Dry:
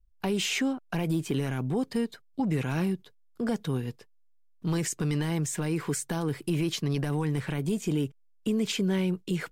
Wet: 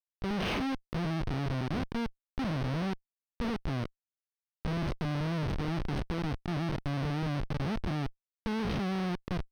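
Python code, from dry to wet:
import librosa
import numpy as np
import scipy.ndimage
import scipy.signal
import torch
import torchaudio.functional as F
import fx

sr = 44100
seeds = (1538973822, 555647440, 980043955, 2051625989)

y = fx.spec_blur(x, sr, span_ms=97.0)
y = fx.schmitt(y, sr, flips_db=-29.5)
y = scipy.signal.savgol_filter(y, 15, 4, mode='constant')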